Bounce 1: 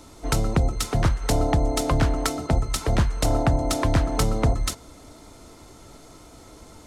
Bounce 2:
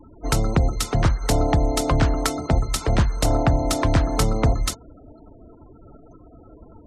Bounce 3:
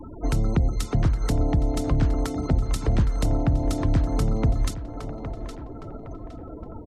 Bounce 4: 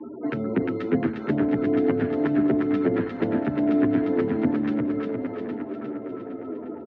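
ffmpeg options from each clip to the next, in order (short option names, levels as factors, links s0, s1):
-af "afftfilt=real='re*gte(hypot(re,im),0.01)':imag='im*gte(hypot(re,im),0.01)':win_size=1024:overlap=0.75,volume=1.26"
-filter_complex "[0:a]acompressor=threshold=0.0251:ratio=2,asplit=2[s0][s1];[s1]adelay=813,lowpass=f=2700:p=1,volume=0.2,asplit=2[s2][s3];[s3]adelay=813,lowpass=f=2700:p=1,volume=0.41,asplit=2[s4][s5];[s5]adelay=813,lowpass=f=2700:p=1,volume=0.41,asplit=2[s6][s7];[s7]adelay=813,lowpass=f=2700:p=1,volume=0.41[s8];[s0][s2][s4][s6][s8]amix=inputs=5:normalize=0,acrossover=split=380[s9][s10];[s10]acompressor=threshold=0.00631:ratio=3[s11];[s9][s11]amix=inputs=2:normalize=0,volume=2.37"
-filter_complex "[0:a]highpass=f=160:w=0.5412,highpass=f=160:w=1.3066,equalizer=f=160:t=q:w=4:g=-9,equalizer=f=250:t=q:w=4:g=6,equalizer=f=390:t=q:w=4:g=8,equalizer=f=780:t=q:w=4:g=-5,equalizer=f=1100:t=q:w=4:g=-5,equalizer=f=1700:t=q:w=4:g=6,lowpass=f=2600:w=0.5412,lowpass=f=2600:w=1.3066,aecho=1:1:354|708|1062|1416|1770|2124|2478:0.708|0.368|0.191|0.0995|0.0518|0.0269|0.014,asplit=2[s0][s1];[s1]adelay=9.8,afreqshift=-0.89[s2];[s0][s2]amix=inputs=2:normalize=1,volume=1.58"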